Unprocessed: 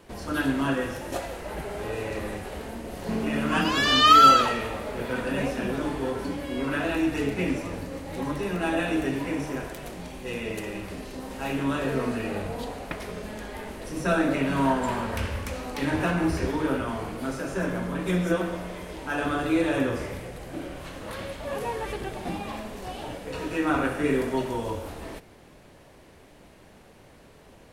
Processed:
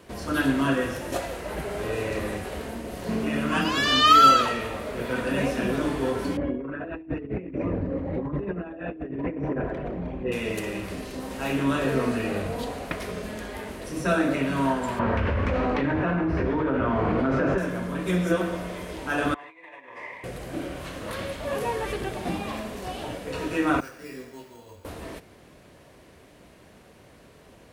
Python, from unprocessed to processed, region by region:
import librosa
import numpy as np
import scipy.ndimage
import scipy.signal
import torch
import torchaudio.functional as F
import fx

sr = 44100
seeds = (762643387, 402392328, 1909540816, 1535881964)

y = fx.chain(x, sr, fx.envelope_sharpen(power=1.5),
    fx.lowpass(hz=1900.0, slope=12),
    fx.over_compress(threshold_db=-32.0, ratio=-0.5), at=(6.37, 10.32))
y = fx.chain(y, sr, fx.lowpass(hz=1900.0, slope=12),
    fx.env_flatten(amount_pct=100), at=(14.99, 17.58))
y = fx.chain(y, sr, fx.over_compress(threshold_db=-32.0, ratio=-1.0),
    fx.double_bandpass(hz=1400.0, octaves=1.0), at=(19.34, 20.24))
y = fx.chain(y, sr, fx.pre_emphasis(coefficient=0.8),
    fx.resample_bad(factor=6, down='filtered', up='hold'),
    fx.detune_double(cents=17), at=(23.8, 24.85))
y = scipy.signal.sosfilt(scipy.signal.butter(2, 43.0, 'highpass', fs=sr, output='sos'), y)
y = fx.notch(y, sr, hz=840.0, q=12.0)
y = fx.rider(y, sr, range_db=3, speed_s=2.0)